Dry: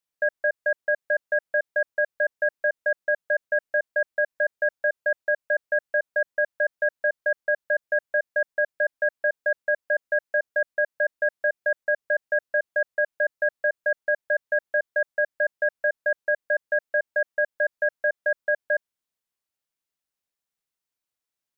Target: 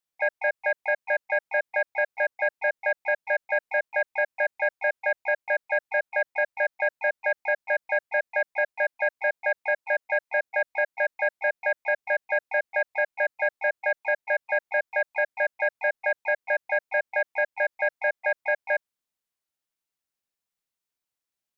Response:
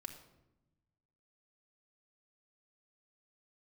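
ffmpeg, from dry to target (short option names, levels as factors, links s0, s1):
-filter_complex "[0:a]acontrast=72,asplit=4[s0][s1][s2][s3];[s1]asetrate=55563,aresample=44100,atempo=0.793701,volume=0.141[s4];[s2]asetrate=58866,aresample=44100,atempo=0.749154,volume=0.251[s5];[s3]asetrate=66075,aresample=44100,atempo=0.66742,volume=0.178[s6];[s0][s4][s5][s6]amix=inputs=4:normalize=0,volume=0.398"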